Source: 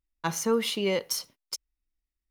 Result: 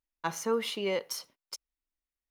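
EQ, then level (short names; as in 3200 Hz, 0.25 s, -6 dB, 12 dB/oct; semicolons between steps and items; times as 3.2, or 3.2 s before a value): low shelf 270 Hz -12 dB; high shelf 2600 Hz -8 dB; 0.0 dB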